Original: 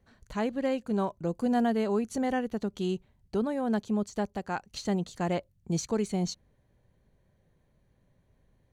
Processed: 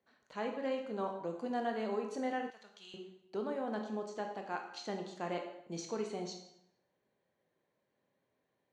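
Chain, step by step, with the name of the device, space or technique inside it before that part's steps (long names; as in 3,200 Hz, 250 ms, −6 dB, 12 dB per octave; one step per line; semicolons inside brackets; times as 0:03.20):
supermarket ceiling speaker (band-pass filter 320–5,400 Hz; convolution reverb RT60 0.75 s, pre-delay 17 ms, DRR 2.5 dB)
0:02.50–0:02.94: guitar amp tone stack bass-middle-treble 10-0-10
level −7 dB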